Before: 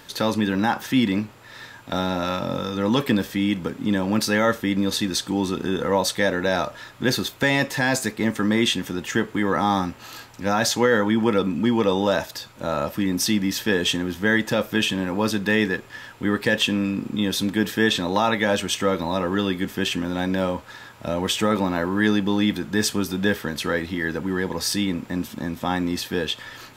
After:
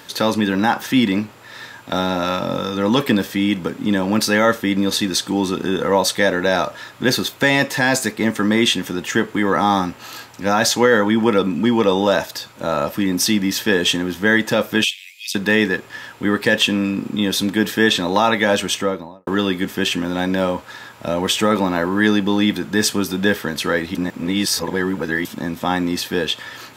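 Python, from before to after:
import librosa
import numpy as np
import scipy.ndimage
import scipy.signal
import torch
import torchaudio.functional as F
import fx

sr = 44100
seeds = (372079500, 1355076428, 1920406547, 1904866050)

y = fx.steep_highpass(x, sr, hz=2100.0, slope=96, at=(14.84, 15.35))
y = fx.studio_fade_out(y, sr, start_s=18.65, length_s=0.62)
y = fx.edit(y, sr, fx.reverse_span(start_s=23.95, length_s=1.3), tone=tone)
y = fx.highpass(y, sr, hz=140.0, slope=6)
y = y * 10.0 ** (5.0 / 20.0)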